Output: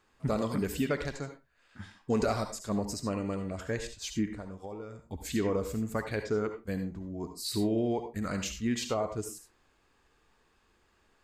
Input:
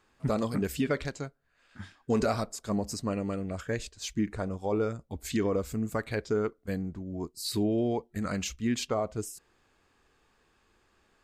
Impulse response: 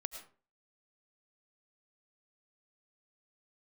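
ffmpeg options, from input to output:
-filter_complex "[0:a]asplit=3[a][b][c];[a]afade=t=out:st=4.31:d=0.02[d];[b]acompressor=threshold=-37dB:ratio=10,afade=t=in:st=4.31:d=0.02,afade=t=out:st=5.01:d=0.02[e];[c]afade=t=in:st=5.01:d=0.02[f];[d][e][f]amix=inputs=3:normalize=0[g];[1:a]atrim=start_sample=2205,afade=t=out:st=0.32:d=0.01,atrim=end_sample=14553,asetrate=66150,aresample=44100[h];[g][h]afir=irnorm=-1:irlink=0,volume=4.5dB"

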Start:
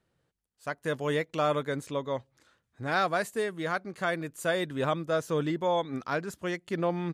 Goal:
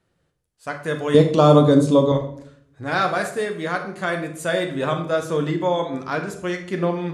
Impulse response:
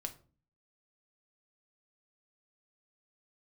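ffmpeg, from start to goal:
-filter_complex "[0:a]asettb=1/sr,asplit=3[a][b][c];[a]atrim=end=1.144[d];[b]atrim=start=1.14:end=2.12,asetpts=PTS-STARTPTS,afade=t=in:d=0.004:c=qsin,afade=t=out:st=0.976:d=0.004:c=qsin,equalizer=f=125:t=o:w=1:g=11,equalizer=f=250:t=o:w=1:g=12,equalizer=f=500:t=o:w=1:g=6,equalizer=f=1k:t=o:w=1:g=7,equalizer=f=2k:t=o:w=1:g=-11,equalizer=f=4k:t=o:w=1:g=9,equalizer=f=8k:t=o:w=1:g=4[e];[c]atrim=start=2.116[f];[d][e]acrossfade=d=0.004:c1=hsin:c2=qsin[g];[g][f]acrossfade=d=0.004:c1=qsin:c2=hsin[h];[1:a]atrim=start_sample=2205,asetrate=22491,aresample=44100[i];[h][i]afir=irnorm=-1:irlink=0,volume=4dB"

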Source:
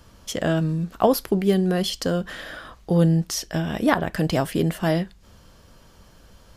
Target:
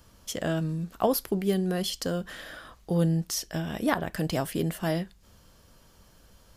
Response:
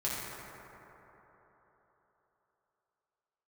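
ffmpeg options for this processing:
-af "highshelf=f=7.3k:g=8,volume=-6.5dB"

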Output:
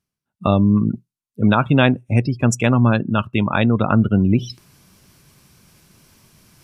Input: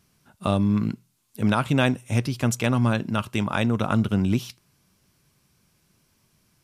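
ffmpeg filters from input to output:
-af "afftdn=nr=32:nf=-32,areverse,acompressor=mode=upward:threshold=-29dB:ratio=2.5,areverse,volume=6.5dB"

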